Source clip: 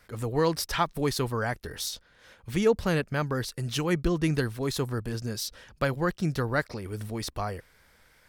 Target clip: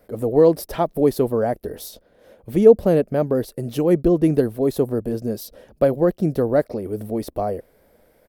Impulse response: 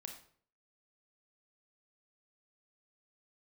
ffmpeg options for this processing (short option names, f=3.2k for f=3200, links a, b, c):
-af "firequalizer=gain_entry='entry(120,0);entry(220,9);entry(630,13);entry(910,-1);entry(1400,-7);entry(6500,-9);entry(12000,4)':delay=0.05:min_phase=1,volume=1dB"